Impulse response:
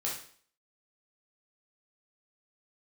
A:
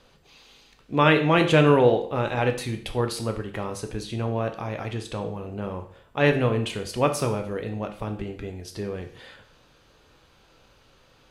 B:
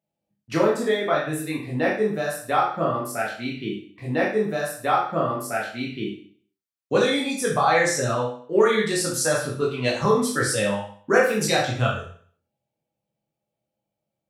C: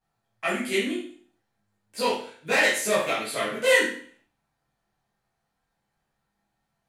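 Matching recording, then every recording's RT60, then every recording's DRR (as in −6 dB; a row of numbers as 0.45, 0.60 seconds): B; 0.50, 0.50, 0.50 seconds; 5.0, −4.5, −10.5 decibels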